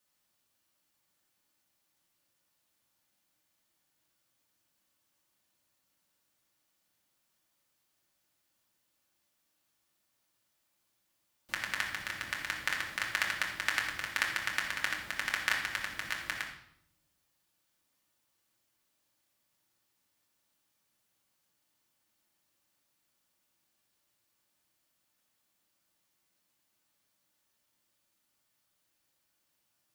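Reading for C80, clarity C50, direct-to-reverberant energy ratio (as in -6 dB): 8.0 dB, 5.5 dB, -2.0 dB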